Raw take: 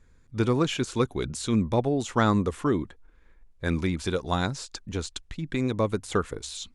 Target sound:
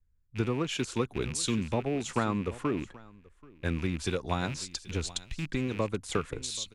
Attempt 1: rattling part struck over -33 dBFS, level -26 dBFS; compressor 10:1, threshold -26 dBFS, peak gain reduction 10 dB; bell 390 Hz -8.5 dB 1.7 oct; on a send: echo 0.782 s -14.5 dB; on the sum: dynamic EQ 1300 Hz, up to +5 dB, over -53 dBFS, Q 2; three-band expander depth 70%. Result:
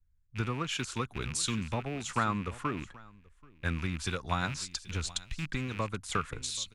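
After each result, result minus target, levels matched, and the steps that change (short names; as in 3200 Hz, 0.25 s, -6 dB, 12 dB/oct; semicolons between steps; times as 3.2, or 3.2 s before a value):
500 Hz band -5.5 dB; 1000 Hz band +3.5 dB
remove: bell 390 Hz -8.5 dB 1.7 oct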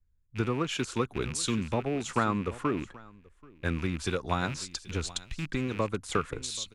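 1000 Hz band +2.5 dB
remove: dynamic EQ 1300 Hz, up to +5 dB, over -53 dBFS, Q 2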